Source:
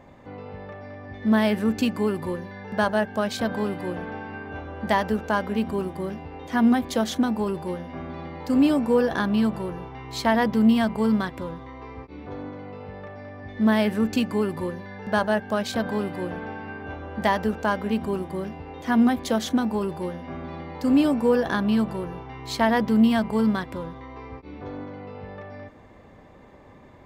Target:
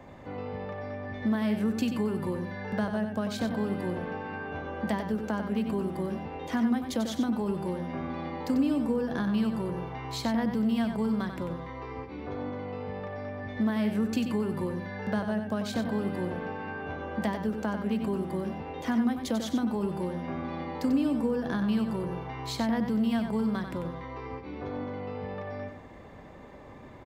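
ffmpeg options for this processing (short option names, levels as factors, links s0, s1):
-filter_complex "[0:a]acrossover=split=100|290[s0][s1][s2];[s0]acompressor=threshold=0.002:ratio=4[s3];[s1]acompressor=threshold=0.0316:ratio=4[s4];[s2]acompressor=threshold=0.0158:ratio=4[s5];[s3][s4][s5]amix=inputs=3:normalize=0,asplit=2[s6][s7];[s7]adelay=93.29,volume=0.447,highshelf=f=4000:g=-2.1[s8];[s6][s8]amix=inputs=2:normalize=0,volume=1.12"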